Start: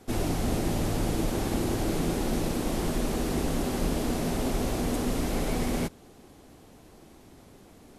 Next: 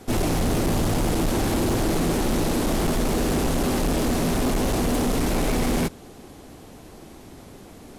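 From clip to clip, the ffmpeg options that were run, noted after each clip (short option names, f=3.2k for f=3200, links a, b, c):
-af "volume=27.5dB,asoftclip=hard,volume=-27.5dB,volume=8.5dB"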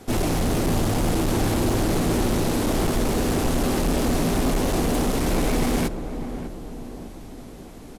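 -filter_complex "[0:a]asplit=2[a][b];[b]adelay=598,lowpass=f=1k:p=1,volume=-9dB,asplit=2[c][d];[d]adelay=598,lowpass=f=1k:p=1,volume=0.54,asplit=2[e][f];[f]adelay=598,lowpass=f=1k:p=1,volume=0.54,asplit=2[g][h];[h]adelay=598,lowpass=f=1k:p=1,volume=0.54,asplit=2[i][j];[j]adelay=598,lowpass=f=1k:p=1,volume=0.54,asplit=2[k][l];[l]adelay=598,lowpass=f=1k:p=1,volume=0.54[m];[a][c][e][g][i][k][m]amix=inputs=7:normalize=0"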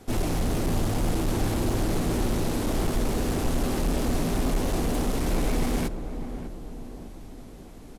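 -af "lowshelf=f=84:g=5.5,volume=-5.5dB"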